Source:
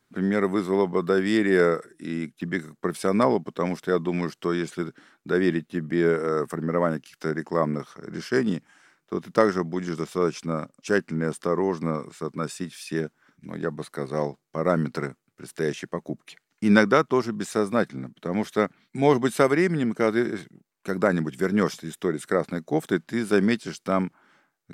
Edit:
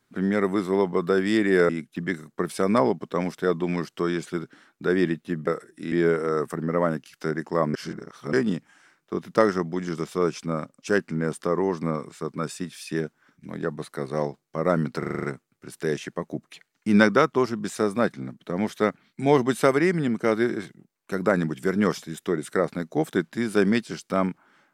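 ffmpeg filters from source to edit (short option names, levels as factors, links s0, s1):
-filter_complex "[0:a]asplit=12[s0][s1][s2][s3][s4][s5][s6][s7][s8][s9][s10][s11];[s0]atrim=end=1.692[s12];[s1]atrim=start=2.138:end=5.922[s13];[s2]atrim=start=1.688:end=2.142[s14];[s3]atrim=start=5.918:end=7.742[s15];[s4]atrim=start=7.738:end=8.332,asetpts=PTS-STARTPTS,areverse[s16];[s5]atrim=start=8.328:end=15.032[s17];[s6]atrim=start=14.988:end=15.032[s18];[s7]atrim=start=14.988:end=15.032[s19];[s8]atrim=start=14.988:end=15.032[s20];[s9]atrim=start=14.988:end=15.032[s21];[s10]atrim=start=14.988:end=15.032[s22];[s11]atrim=start=14.988[s23];[s12][s13]acrossfade=d=0.004:c1=hsin:c2=hsin[s24];[s24][s14]acrossfade=d=0.004:c1=hsin:c2=hsin[s25];[s25][s15]acrossfade=d=0.004:c1=hsin:c2=hsin[s26];[s26][s16]acrossfade=d=0.004:c1=hsin:c2=hsin[s27];[s27][s17]acrossfade=d=0.004:c1=hsin:c2=hsin[s28];[s28][s18]acrossfade=d=0.004:c1=hsin:c2=hsin[s29];[s29][s19]acrossfade=d=0.004:c1=hsin:c2=hsin[s30];[s30][s20]acrossfade=d=0.004:c1=hsin:c2=hsin[s31];[s31][s21]acrossfade=d=0.004:c1=hsin:c2=hsin[s32];[s32][s22]acrossfade=d=0.004:c1=hsin:c2=hsin[s33];[s33][s23]acrossfade=d=0.004:c1=hsin:c2=hsin"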